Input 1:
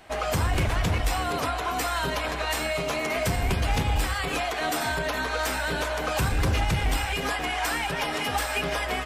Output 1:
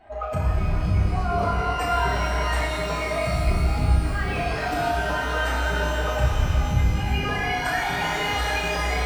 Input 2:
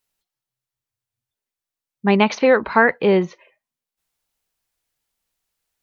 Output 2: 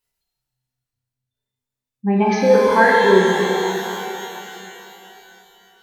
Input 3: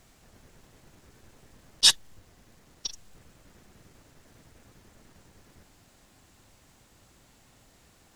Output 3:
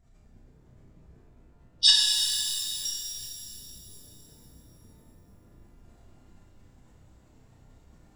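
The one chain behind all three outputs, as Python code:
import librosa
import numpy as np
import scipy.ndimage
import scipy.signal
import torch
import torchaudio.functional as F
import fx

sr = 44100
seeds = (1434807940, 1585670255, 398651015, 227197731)

y = fx.spec_expand(x, sr, power=2.0)
y = fx.room_flutter(y, sr, wall_m=5.4, rt60_s=0.37)
y = fx.rev_shimmer(y, sr, seeds[0], rt60_s=3.2, semitones=12, shimmer_db=-8, drr_db=-2.0)
y = y * librosa.db_to_amplitude(-2.5)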